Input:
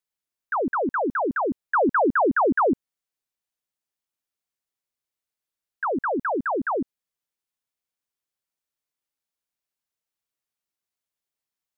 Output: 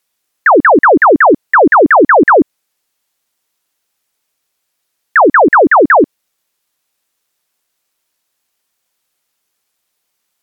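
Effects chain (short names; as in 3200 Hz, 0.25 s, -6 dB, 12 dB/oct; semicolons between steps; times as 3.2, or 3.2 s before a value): low shelf 150 Hz -9 dB; varispeed +13%; maximiser +21 dB; gain -1 dB; SBC 128 kbps 48000 Hz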